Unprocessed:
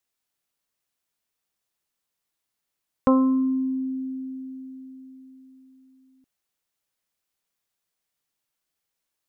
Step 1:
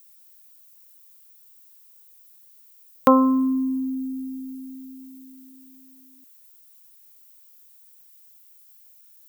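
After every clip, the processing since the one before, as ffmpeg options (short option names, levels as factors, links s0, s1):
-af "aemphasis=mode=production:type=riaa,volume=2.51"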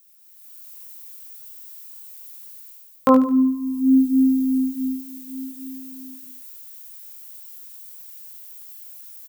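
-filter_complex "[0:a]asplit=2[s0][s1];[s1]aecho=0:1:73|146|219|292:0.422|0.152|0.0547|0.0197[s2];[s0][s2]amix=inputs=2:normalize=0,dynaudnorm=f=180:g=5:m=4.47,flanger=delay=18:depth=7.1:speed=0.68,volume=1.19"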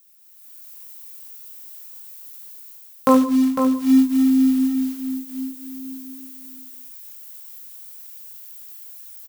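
-af "acrusher=bits=5:mode=log:mix=0:aa=0.000001,aecho=1:1:503:0.447"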